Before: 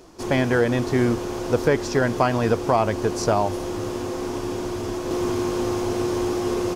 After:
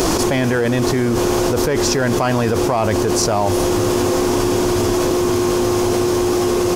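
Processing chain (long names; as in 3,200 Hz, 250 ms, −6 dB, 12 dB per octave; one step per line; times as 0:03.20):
high-shelf EQ 6,700 Hz +8 dB
in parallel at −5.5 dB: soft clipping −20 dBFS, distortion −10 dB
on the sum: envelope flattener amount 100%
level −3.5 dB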